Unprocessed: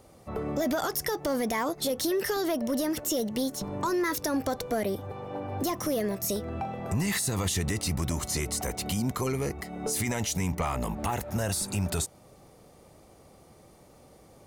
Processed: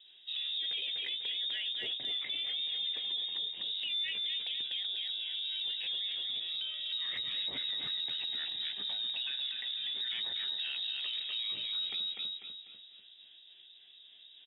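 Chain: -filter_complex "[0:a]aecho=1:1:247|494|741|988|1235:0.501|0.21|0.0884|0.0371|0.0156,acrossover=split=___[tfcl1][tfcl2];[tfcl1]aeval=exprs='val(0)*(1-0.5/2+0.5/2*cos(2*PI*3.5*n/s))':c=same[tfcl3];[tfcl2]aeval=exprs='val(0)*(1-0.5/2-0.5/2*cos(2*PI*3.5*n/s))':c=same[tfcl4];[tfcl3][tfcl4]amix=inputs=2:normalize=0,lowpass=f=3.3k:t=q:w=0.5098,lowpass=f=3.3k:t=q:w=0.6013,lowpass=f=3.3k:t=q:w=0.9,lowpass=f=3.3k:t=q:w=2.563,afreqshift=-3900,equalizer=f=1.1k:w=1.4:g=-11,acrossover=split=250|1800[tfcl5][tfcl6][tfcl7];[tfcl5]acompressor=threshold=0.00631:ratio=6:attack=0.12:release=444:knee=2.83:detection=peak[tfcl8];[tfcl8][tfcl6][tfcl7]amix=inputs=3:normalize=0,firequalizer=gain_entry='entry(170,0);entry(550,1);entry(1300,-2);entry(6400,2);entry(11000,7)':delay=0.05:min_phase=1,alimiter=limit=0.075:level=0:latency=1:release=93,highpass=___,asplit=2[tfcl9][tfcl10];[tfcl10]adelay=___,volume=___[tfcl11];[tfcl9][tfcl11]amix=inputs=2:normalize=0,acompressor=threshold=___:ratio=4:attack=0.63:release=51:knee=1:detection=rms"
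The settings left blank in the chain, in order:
500, 97, 15, 0.376, 0.0251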